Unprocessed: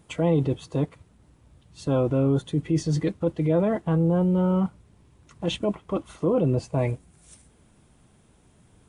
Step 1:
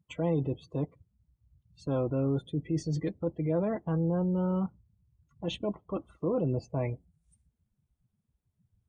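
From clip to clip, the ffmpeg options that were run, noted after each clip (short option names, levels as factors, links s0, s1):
-af "afftdn=nr=25:nf=-42,volume=0.447"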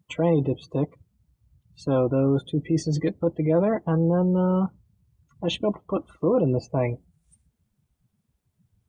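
-af "lowshelf=f=120:g=-7.5,volume=2.82"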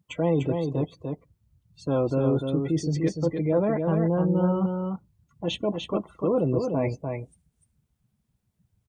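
-af "aecho=1:1:297:0.562,volume=0.75"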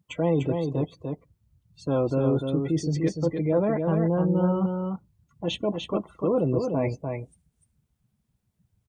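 -af anull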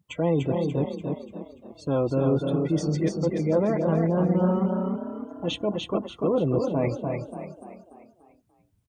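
-filter_complex "[0:a]asplit=6[s0][s1][s2][s3][s4][s5];[s1]adelay=291,afreqshift=34,volume=0.376[s6];[s2]adelay=582,afreqshift=68,volume=0.174[s7];[s3]adelay=873,afreqshift=102,volume=0.0794[s8];[s4]adelay=1164,afreqshift=136,volume=0.0367[s9];[s5]adelay=1455,afreqshift=170,volume=0.0168[s10];[s0][s6][s7][s8][s9][s10]amix=inputs=6:normalize=0"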